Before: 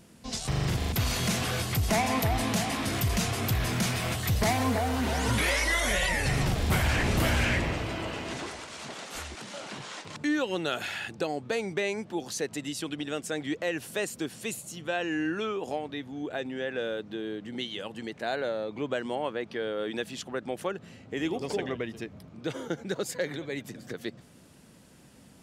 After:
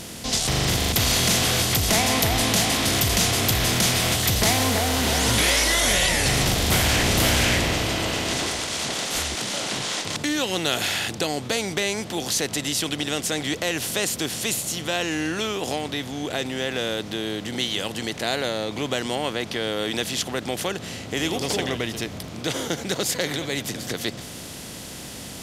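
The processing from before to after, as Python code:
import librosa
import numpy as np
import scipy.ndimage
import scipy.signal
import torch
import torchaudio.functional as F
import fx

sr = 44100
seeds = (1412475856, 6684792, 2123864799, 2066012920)

y = fx.bin_compress(x, sr, power=0.6)
y = fx.band_shelf(y, sr, hz=6300.0, db=8.5, octaves=2.5)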